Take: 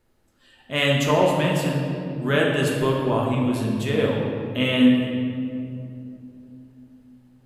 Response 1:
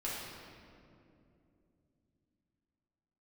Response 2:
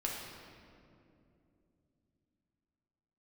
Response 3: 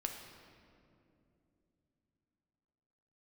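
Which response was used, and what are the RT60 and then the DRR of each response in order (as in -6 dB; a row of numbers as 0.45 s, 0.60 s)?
2; 2.7 s, 2.7 s, 2.8 s; -7.5 dB, -3.0 dB, 2.5 dB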